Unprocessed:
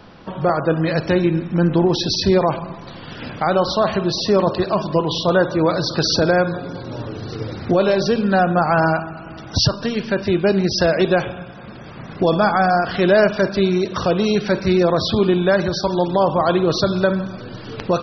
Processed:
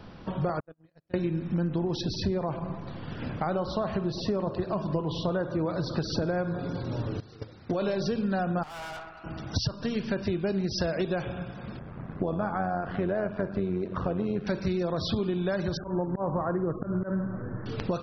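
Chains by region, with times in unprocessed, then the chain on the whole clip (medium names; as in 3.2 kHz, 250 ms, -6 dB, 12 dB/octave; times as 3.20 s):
0.60–1.14 s: compression 2.5:1, threshold -24 dBFS + gate -21 dBFS, range -51 dB
2.01–6.59 s: treble shelf 3.1 kHz -10.5 dB + feedback delay 103 ms, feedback 41%, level -22 dB
7.20–7.82 s: gate -25 dBFS, range -13 dB + bass shelf 400 Hz -7.5 dB
8.63–9.24 s: high-pass 740 Hz + valve stage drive 31 dB, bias 0.65
11.79–14.47 s: low-pass 1.7 kHz + AM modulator 91 Hz, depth 40%
15.77–17.66 s: steep low-pass 1.9 kHz 72 dB/octave + peaking EQ 690 Hz -2.5 dB 0.26 oct + slow attack 139 ms
whole clip: bass shelf 220 Hz +8 dB; compression, threshold -19 dBFS; trim -6.5 dB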